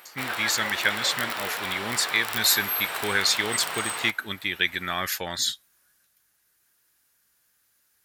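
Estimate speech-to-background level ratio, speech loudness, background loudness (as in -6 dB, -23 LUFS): 4.0 dB, -25.5 LUFS, -29.5 LUFS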